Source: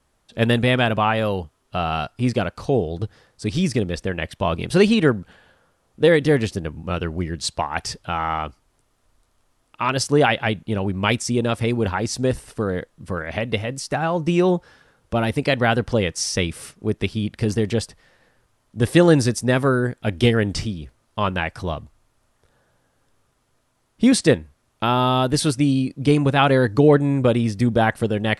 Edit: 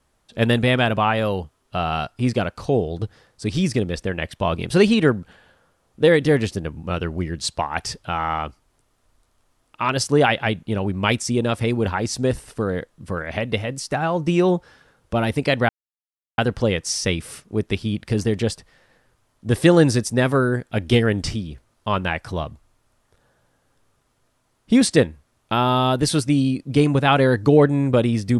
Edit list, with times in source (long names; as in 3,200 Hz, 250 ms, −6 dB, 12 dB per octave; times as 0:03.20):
0:15.69: splice in silence 0.69 s